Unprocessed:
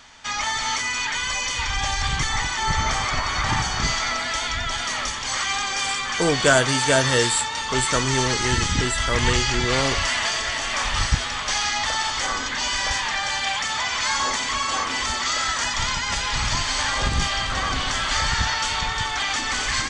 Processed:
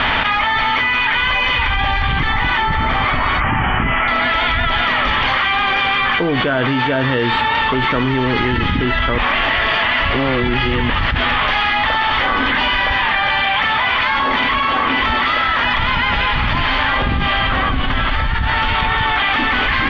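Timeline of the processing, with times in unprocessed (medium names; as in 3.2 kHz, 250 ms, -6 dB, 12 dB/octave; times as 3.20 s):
3.40–4.08 s: steep low-pass 3.1 kHz 96 dB/octave
9.18–10.90 s: reverse
17.68–18.74 s: bass shelf 140 Hz +10 dB
whole clip: steep low-pass 3.2 kHz 36 dB/octave; dynamic bell 260 Hz, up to +6 dB, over -41 dBFS, Q 1.8; level flattener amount 100%; trim -4 dB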